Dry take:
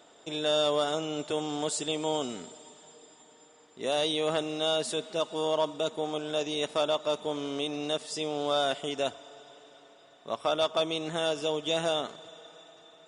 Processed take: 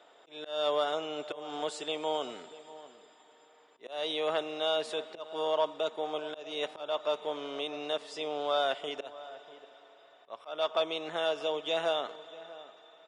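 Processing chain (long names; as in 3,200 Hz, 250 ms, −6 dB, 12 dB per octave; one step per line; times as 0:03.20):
volume swells 236 ms
three-way crossover with the lows and the highs turned down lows −15 dB, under 390 Hz, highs −15 dB, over 3,900 Hz
slap from a distant wall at 110 metres, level −17 dB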